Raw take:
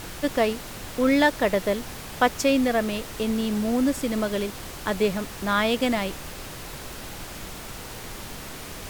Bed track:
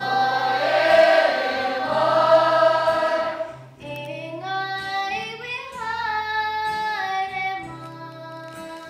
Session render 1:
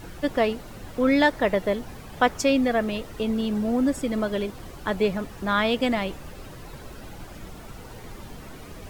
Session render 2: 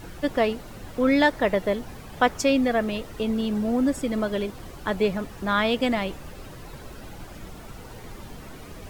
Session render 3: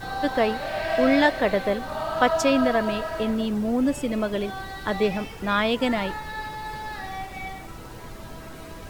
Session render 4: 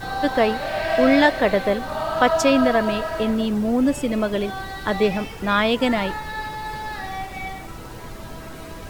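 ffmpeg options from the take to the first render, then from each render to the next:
-af "afftdn=nr=11:nf=-38"
-af anull
-filter_complex "[1:a]volume=-10dB[a];[0:a][a]amix=inputs=2:normalize=0"
-af "volume=3.5dB,alimiter=limit=-3dB:level=0:latency=1"

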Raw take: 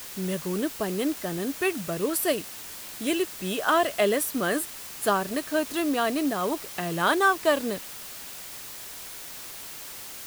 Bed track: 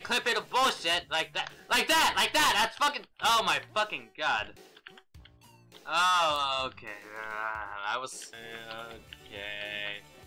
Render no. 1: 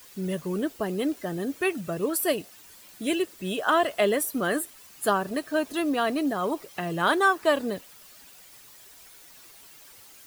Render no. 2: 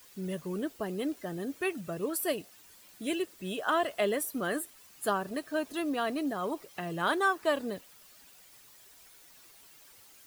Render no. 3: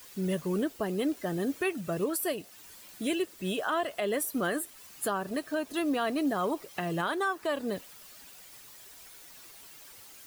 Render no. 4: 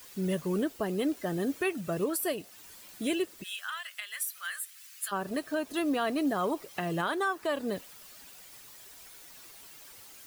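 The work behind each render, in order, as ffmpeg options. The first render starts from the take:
-af "afftdn=nr=12:nf=-40"
-af "volume=-6dB"
-af "acontrast=38,alimiter=limit=-20.5dB:level=0:latency=1:release=335"
-filter_complex "[0:a]asplit=3[a][b][c];[a]afade=t=out:st=3.42:d=0.02[d];[b]highpass=f=1.5k:w=0.5412,highpass=f=1.5k:w=1.3066,afade=t=in:st=3.42:d=0.02,afade=t=out:st=5.11:d=0.02[e];[c]afade=t=in:st=5.11:d=0.02[f];[d][e][f]amix=inputs=3:normalize=0"

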